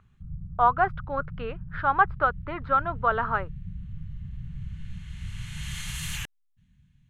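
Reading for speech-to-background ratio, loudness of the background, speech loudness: 13.0 dB, −38.5 LKFS, −25.5 LKFS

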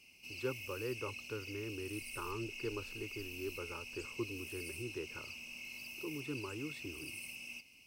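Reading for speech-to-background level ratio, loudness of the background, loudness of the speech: 0.5 dB, −45.5 LKFS, −45.0 LKFS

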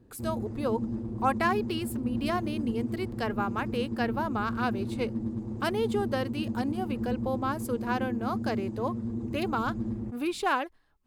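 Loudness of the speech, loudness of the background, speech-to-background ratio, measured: −32.5 LKFS, −34.5 LKFS, 2.0 dB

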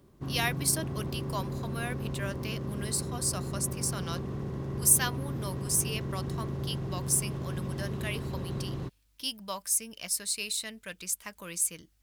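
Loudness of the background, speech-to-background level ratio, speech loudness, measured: −36.0 LKFS, 4.5 dB, −31.5 LKFS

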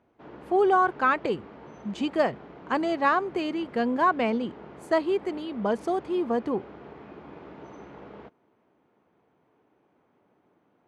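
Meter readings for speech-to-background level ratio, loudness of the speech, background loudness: 19.5 dB, −26.5 LKFS, −46.0 LKFS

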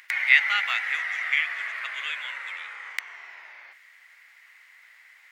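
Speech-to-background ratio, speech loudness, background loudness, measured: 5.0 dB, −24.5 LKFS, −29.5 LKFS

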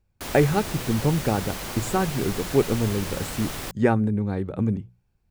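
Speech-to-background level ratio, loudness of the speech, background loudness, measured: 7.5 dB, −25.0 LKFS, −32.5 LKFS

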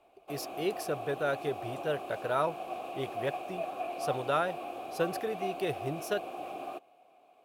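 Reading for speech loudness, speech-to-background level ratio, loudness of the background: −35.0 LKFS, 5.0 dB, −40.0 LKFS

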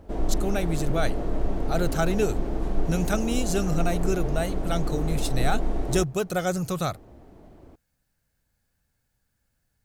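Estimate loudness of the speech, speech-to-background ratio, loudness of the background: −28.5 LKFS, 3.0 dB, −31.5 LKFS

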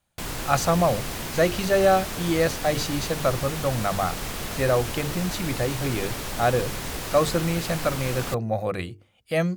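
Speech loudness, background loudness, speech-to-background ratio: −25.5 LKFS, −31.5 LKFS, 6.0 dB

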